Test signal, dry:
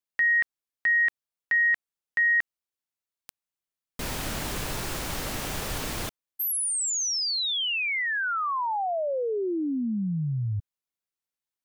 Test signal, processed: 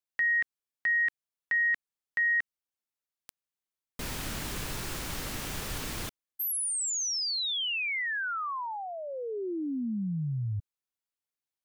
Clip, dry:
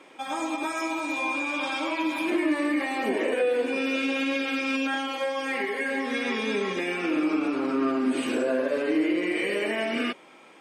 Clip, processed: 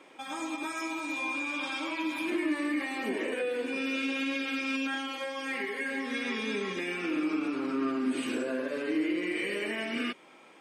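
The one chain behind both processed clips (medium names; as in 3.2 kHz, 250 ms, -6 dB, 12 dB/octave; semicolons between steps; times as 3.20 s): dynamic bell 660 Hz, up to -7 dB, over -42 dBFS, Q 1.2; trim -3.5 dB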